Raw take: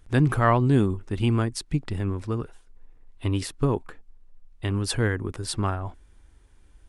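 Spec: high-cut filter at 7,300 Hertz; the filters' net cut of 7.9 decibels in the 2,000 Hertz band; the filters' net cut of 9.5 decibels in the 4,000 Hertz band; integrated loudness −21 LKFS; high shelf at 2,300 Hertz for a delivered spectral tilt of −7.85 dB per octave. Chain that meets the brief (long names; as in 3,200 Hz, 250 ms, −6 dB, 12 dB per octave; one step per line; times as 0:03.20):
low-pass filter 7,300 Hz
parametric band 2,000 Hz −8 dB
high-shelf EQ 2,300 Hz −3 dB
parametric band 4,000 Hz −6.5 dB
level +5.5 dB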